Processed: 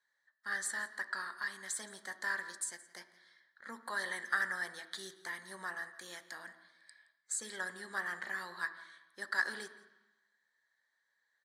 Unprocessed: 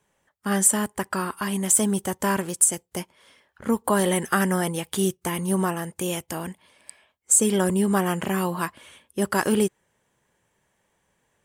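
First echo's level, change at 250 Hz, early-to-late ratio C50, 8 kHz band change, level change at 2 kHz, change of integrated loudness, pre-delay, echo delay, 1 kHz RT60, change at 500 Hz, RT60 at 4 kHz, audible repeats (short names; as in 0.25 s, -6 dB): -20.0 dB, -32.5 dB, 12.0 dB, -20.0 dB, -3.5 dB, -15.5 dB, 3 ms, 0.17 s, 1.1 s, -25.5 dB, 1.1 s, 1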